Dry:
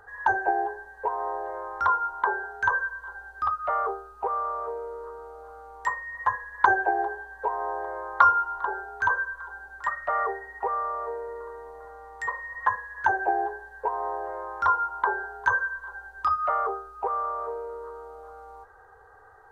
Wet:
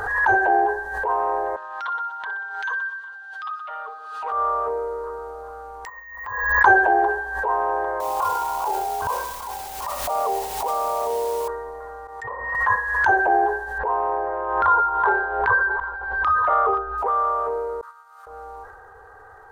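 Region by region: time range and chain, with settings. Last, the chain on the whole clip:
1.56–4.32 s: band-pass filter 3.3 kHz, Q 2.3 + comb 6.4 ms, depth 95% + feedback delay 61 ms, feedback 56%, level -15.5 dB
5.85–6.61 s: careless resampling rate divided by 2×, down none, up hold + compression 12:1, threshold -32 dBFS + gate -36 dBFS, range -16 dB
8.00–11.48 s: FFT filter 310 Hz 0 dB, 720 Hz +10 dB, 1 kHz +7 dB, 1.7 kHz -23 dB + compression 3:1, threshold -28 dBFS + word length cut 8-bit, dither triangular
12.07–12.55 s: gate -42 dBFS, range -18 dB + low-pass that closes with the level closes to 770 Hz, closed at -30.5 dBFS + high-pass 80 Hz
13.78–16.98 s: chunks repeated in reverse 546 ms, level -12 dB + Gaussian low-pass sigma 2.7 samples
17.81–18.27 s: high-pass 1.2 kHz 24 dB/octave + expander -45 dBFS
whole clip: transient shaper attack -9 dB, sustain +5 dB; swell ahead of each attack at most 48 dB/s; trim +7.5 dB

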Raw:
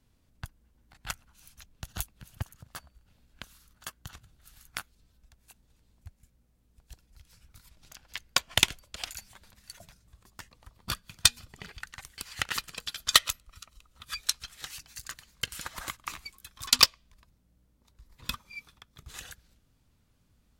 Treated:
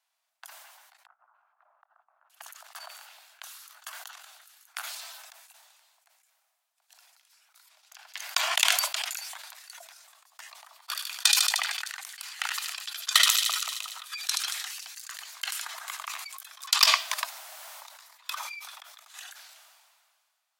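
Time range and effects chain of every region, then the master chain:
1.06–2.30 s: Chebyshev band-pass 250–1300 Hz, order 3 + inverted gate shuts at -43 dBFS, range -40 dB
10.77–15.18 s: high-pass 630 Hz + feedback echo behind a high-pass 76 ms, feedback 71%, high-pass 2.6 kHz, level -20 dB
whole clip: steep high-pass 650 Hz 72 dB/octave; decay stretcher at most 30 dB/s; trim -2 dB

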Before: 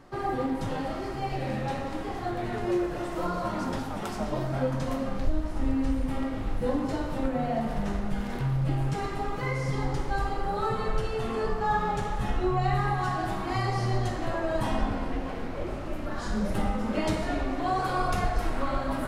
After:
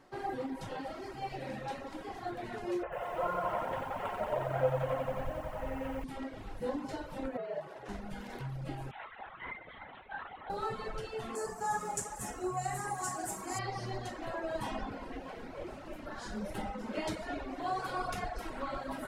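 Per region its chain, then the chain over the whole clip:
2.83–6.04 s: FFT filter 140 Hz 0 dB, 300 Hz -12 dB, 500 Hz +6 dB, 3 kHz +1 dB, 5 kHz -26 dB, 8.2 kHz -14 dB + bit-crushed delay 90 ms, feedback 80%, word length 9-bit, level -4 dB
7.37–7.89 s: treble shelf 3.4 kHz -10.5 dB + frequency shift -73 Hz + high-pass 290 Hz
8.91–10.50 s: band-pass filter 2 kHz, Q 0.84 + LPC vocoder at 8 kHz whisper
11.35–13.59 s: high-pass 93 Hz 6 dB/octave + resonant high shelf 5.3 kHz +14 dB, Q 3
whole clip: reverb removal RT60 0.77 s; bass shelf 190 Hz -10 dB; band-stop 1.2 kHz, Q 16; trim -5 dB

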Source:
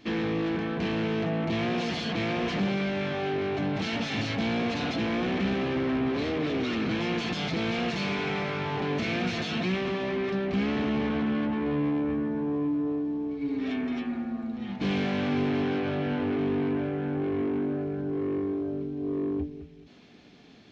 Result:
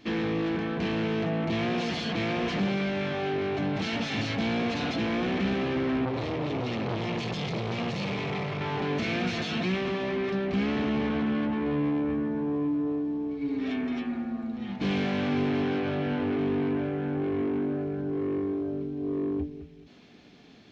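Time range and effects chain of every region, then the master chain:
6.05–8.61 s: peaking EQ 120 Hz +14.5 dB 0.49 oct + band-stop 1.5 kHz, Q 5.3 + transformer saturation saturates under 760 Hz
whole clip: none

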